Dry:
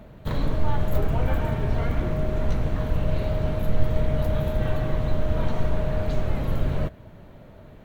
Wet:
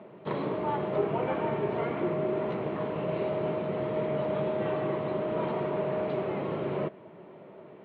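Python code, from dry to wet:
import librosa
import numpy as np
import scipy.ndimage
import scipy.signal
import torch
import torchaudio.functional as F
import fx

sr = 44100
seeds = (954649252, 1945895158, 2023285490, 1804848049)

y = fx.cabinet(x, sr, low_hz=180.0, low_slope=24, high_hz=2900.0, hz=(250.0, 380.0, 1000.0, 1600.0), db=(-7, 9, 3, -6))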